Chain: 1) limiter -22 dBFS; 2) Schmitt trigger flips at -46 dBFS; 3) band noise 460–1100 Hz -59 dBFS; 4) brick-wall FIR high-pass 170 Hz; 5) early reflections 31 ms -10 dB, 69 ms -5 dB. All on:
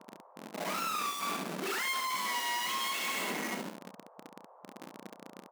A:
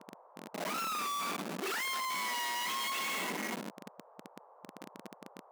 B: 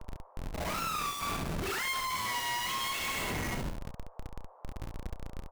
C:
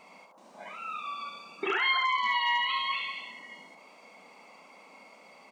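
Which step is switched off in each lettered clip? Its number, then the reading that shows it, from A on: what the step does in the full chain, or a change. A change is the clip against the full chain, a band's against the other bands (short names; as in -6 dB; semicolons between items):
5, echo-to-direct -4.0 dB to none; 4, 125 Hz band +12.0 dB; 2, crest factor change +5.0 dB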